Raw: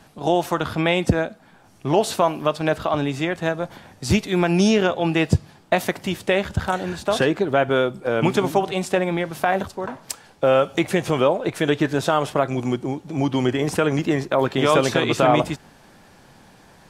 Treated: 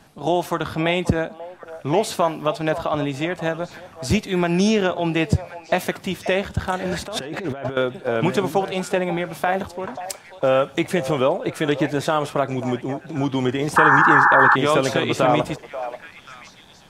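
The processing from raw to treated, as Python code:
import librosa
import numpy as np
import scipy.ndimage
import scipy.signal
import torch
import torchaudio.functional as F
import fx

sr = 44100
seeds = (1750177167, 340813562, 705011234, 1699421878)

y = fx.echo_stepped(x, sr, ms=536, hz=700.0, octaves=1.4, feedback_pct=70, wet_db=-10)
y = fx.over_compress(y, sr, threshold_db=-27.0, ratio=-1.0, at=(6.85, 7.77))
y = fx.spec_paint(y, sr, seeds[0], shape='noise', start_s=13.76, length_s=0.8, low_hz=800.0, high_hz=1800.0, level_db=-13.0)
y = y * librosa.db_to_amplitude(-1.0)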